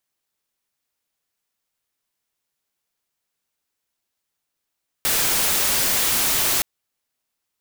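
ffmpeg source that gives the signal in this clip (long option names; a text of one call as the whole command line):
ffmpeg -f lavfi -i "anoisesrc=color=white:amplitude=0.173:duration=1.57:sample_rate=44100:seed=1" out.wav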